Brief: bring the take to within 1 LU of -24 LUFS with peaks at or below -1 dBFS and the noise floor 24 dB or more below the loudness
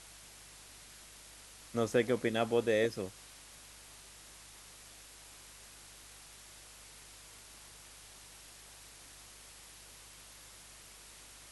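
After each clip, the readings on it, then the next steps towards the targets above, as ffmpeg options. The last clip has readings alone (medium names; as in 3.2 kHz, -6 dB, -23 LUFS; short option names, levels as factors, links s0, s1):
hum 50 Hz; highest harmonic 150 Hz; hum level -62 dBFS; noise floor -55 dBFS; noise floor target -57 dBFS; loudness -32.5 LUFS; peak level -16.0 dBFS; loudness target -24.0 LUFS
-> -af "bandreject=f=50:t=h:w=4,bandreject=f=100:t=h:w=4,bandreject=f=150:t=h:w=4"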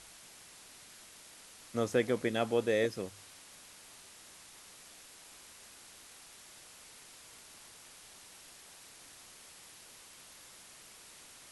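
hum not found; noise floor -55 dBFS; noise floor target -57 dBFS
-> -af "afftdn=nr=6:nf=-55"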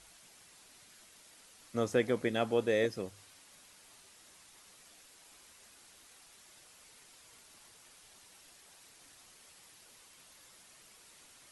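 noise floor -60 dBFS; loudness -32.5 LUFS; peak level -16.0 dBFS; loudness target -24.0 LUFS
-> -af "volume=2.66"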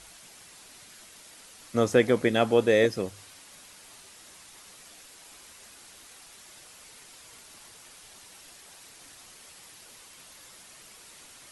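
loudness -24.0 LUFS; peak level -7.5 dBFS; noise floor -51 dBFS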